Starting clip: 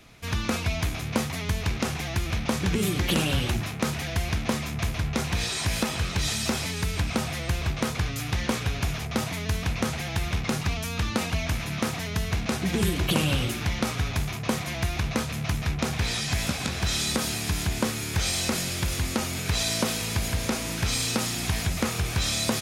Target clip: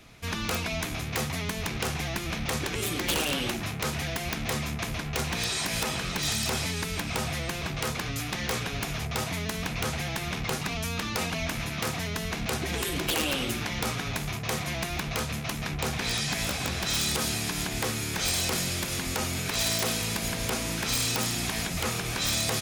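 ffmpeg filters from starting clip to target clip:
-af "afftfilt=real='re*lt(hypot(re,im),0.316)':imag='im*lt(hypot(re,im),0.316)':win_size=1024:overlap=0.75,aeval=exprs='(mod(7.94*val(0)+1,2)-1)/7.94':c=same"

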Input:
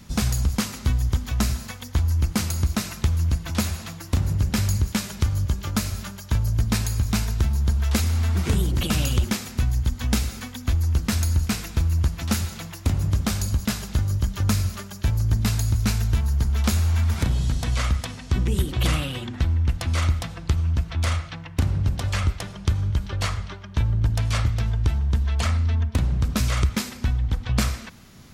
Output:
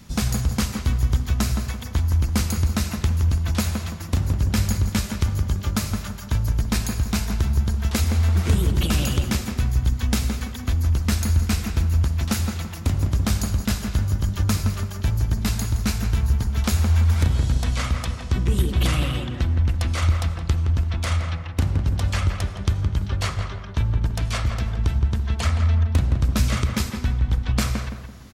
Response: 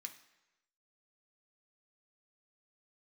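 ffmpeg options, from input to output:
-filter_complex "[0:a]asplit=2[s0][s1];[s1]adelay=168,lowpass=f=1700:p=1,volume=0.596,asplit=2[s2][s3];[s3]adelay=168,lowpass=f=1700:p=1,volume=0.41,asplit=2[s4][s5];[s5]adelay=168,lowpass=f=1700:p=1,volume=0.41,asplit=2[s6][s7];[s7]adelay=168,lowpass=f=1700:p=1,volume=0.41,asplit=2[s8][s9];[s9]adelay=168,lowpass=f=1700:p=1,volume=0.41[s10];[s0][s2][s4][s6][s8][s10]amix=inputs=6:normalize=0"

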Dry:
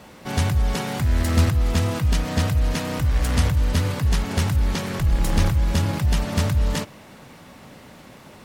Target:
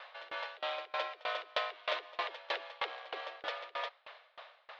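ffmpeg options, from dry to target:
-af "aemphasis=mode=production:type=75fm,asetrate=77616,aresample=44100,highpass=f=430:t=q:w=0.5412,highpass=f=430:t=q:w=1.307,lowpass=f=3600:t=q:w=0.5176,lowpass=f=3600:t=q:w=0.7071,lowpass=f=3600:t=q:w=1.932,afreqshift=180,aeval=exprs='val(0)*pow(10,-27*if(lt(mod(3.2*n/s,1),2*abs(3.2)/1000),1-mod(3.2*n/s,1)/(2*abs(3.2)/1000),(mod(3.2*n/s,1)-2*abs(3.2)/1000)/(1-2*abs(3.2)/1000))/20)':c=same"

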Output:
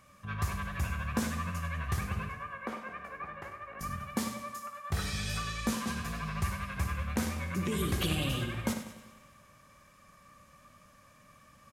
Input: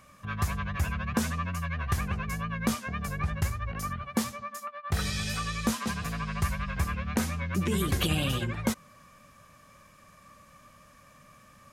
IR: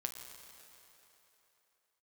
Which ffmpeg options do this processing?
-filter_complex "[0:a]flanger=delay=9.9:depth=8:regen=-73:speed=0.45:shape=sinusoidal,asettb=1/sr,asplit=3[s0][s1][s2];[s0]atrim=end=2.294[s3];[s1]atrim=start=2.29:end=3.81,asetpts=PTS-STARTPTS,afade=t=in:d=0.004:c=qsin,afade=t=out:st=1.516:d=0.004:c=qsin,acrossover=split=290 2400:gain=0.0631 1 0.0891[s4][s5][s6];[s4][s5][s6]amix=inputs=3:normalize=0[s7];[s2]atrim=start=3.806[s8];[s3][s7]acrossfade=d=0.004:c1=hsin:c2=qsin[s9];[s9][s8]acrossfade=d=0.004:c1=qsin:c2=hsin,aecho=1:1:98|196|294|392|490:0.282|0.135|0.0649|0.0312|0.015,asplit=2[s10][s11];[1:a]atrim=start_sample=2205,asetrate=79380,aresample=44100,adelay=57[s12];[s11][s12]afir=irnorm=-1:irlink=0,volume=0.708[s13];[s10][s13]amix=inputs=2:normalize=0"

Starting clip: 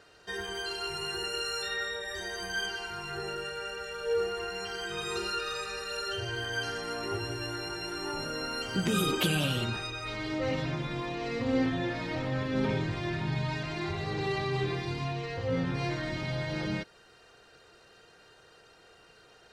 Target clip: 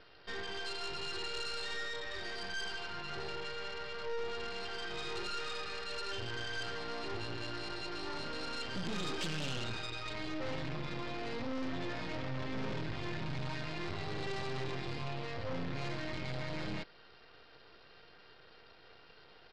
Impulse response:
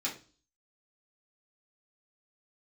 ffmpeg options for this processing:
-af "aresample=11025,aeval=exprs='max(val(0),0)':c=same,aresample=44100,aeval=exprs='(tanh(35.5*val(0)+0.35)-tanh(0.35))/35.5':c=same,volume=1.58"

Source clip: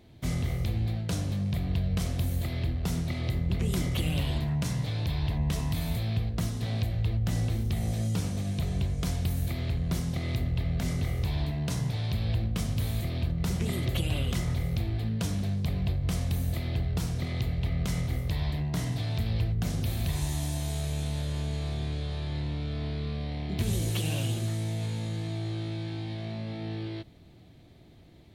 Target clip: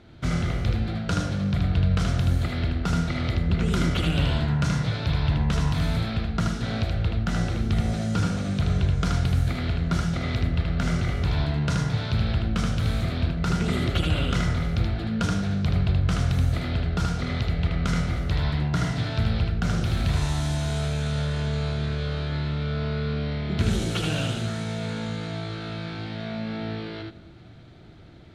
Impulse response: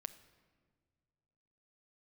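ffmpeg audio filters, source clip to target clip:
-filter_complex "[0:a]lowpass=6100,equalizer=f=1400:t=o:w=0.28:g=15,asplit=2[s0][s1];[1:a]atrim=start_sample=2205,adelay=77[s2];[s1][s2]afir=irnorm=-1:irlink=0,volume=1[s3];[s0][s3]amix=inputs=2:normalize=0,volume=1.68"

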